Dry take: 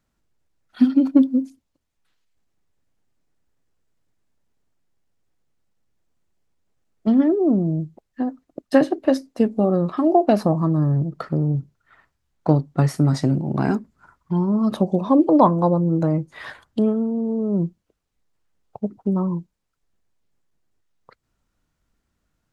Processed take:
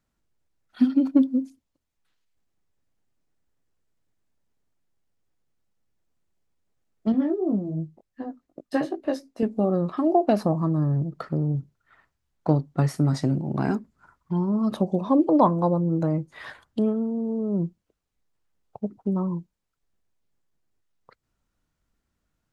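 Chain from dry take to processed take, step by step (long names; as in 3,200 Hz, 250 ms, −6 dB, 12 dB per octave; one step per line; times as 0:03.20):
0:07.12–0:09.43: chorus effect 2.7 Hz, delay 18 ms, depth 3.2 ms
level −4 dB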